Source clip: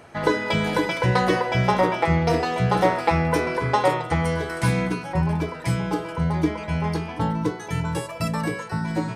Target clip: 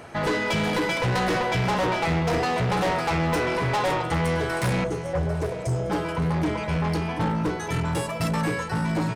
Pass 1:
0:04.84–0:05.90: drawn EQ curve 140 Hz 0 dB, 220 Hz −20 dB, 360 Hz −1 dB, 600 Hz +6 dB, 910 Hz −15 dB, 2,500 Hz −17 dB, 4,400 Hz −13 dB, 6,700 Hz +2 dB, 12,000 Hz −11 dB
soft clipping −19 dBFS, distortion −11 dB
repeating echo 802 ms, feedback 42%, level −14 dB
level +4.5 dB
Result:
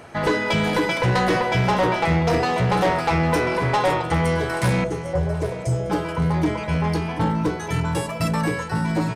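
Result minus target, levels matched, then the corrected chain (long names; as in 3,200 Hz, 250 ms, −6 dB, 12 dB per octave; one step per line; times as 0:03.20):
soft clipping: distortion −5 dB
0:04.84–0:05.90: drawn EQ curve 140 Hz 0 dB, 220 Hz −20 dB, 360 Hz −1 dB, 600 Hz +6 dB, 910 Hz −15 dB, 2,500 Hz −17 dB, 4,400 Hz −13 dB, 6,700 Hz +2 dB, 12,000 Hz −11 dB
soft clipping −25.5 dBFS, distortion −6 dB
repeating echo 802 ms, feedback 42%, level −14 dB
level +4.5 dB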